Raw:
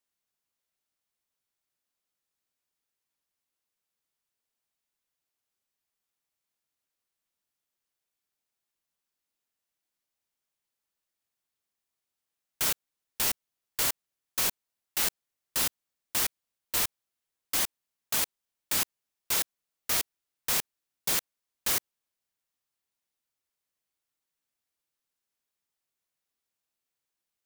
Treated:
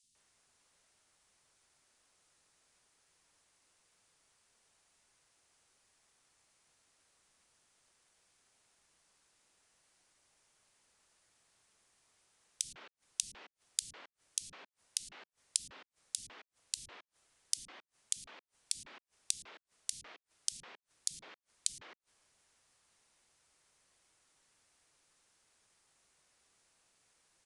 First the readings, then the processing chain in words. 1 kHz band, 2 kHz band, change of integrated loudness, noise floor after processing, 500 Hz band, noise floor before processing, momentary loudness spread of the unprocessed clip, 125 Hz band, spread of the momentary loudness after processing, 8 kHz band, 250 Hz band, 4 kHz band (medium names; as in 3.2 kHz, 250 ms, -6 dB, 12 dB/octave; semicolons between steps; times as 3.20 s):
-18.5 dB, -18.0 dB, -10.5 dB, under -85 dBFS, -19.0 dB, under -85 dBFS, 7 LU, under -15 dB, 19 LU, -6.5 dB, -20.5 dB, -9.5 dB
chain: resampled via 22.05 kHz; three bands offset in time highs, lows, mids 30/150 ms, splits 240/3400 Hz; inverted gate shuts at -33 dBFS, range -36 dB; trim +17.5 dB